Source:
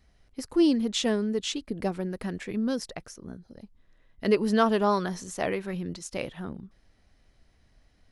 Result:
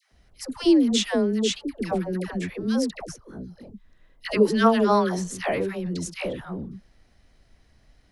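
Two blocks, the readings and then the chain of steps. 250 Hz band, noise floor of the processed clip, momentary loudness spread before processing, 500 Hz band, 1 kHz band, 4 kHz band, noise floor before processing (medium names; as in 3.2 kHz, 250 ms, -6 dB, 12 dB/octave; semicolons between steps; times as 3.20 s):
+4.0 dB, -60 dBFS, 19 LU, +4.0 dB, +4.0 dB, +4.0 dB, -64 dBFS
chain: phase dispersion lows, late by 122 ms, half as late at 710 Hz; trim +4 dB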